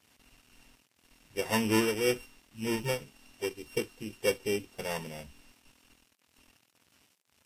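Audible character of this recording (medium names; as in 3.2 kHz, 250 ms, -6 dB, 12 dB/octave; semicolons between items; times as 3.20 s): a buzz of ramps at a fixed pitch in blocks of 16 samples; tremolo triangle 1.9 Hz, depth 45%; a quantiser's noise floor 10-bit, dither none; Vorbis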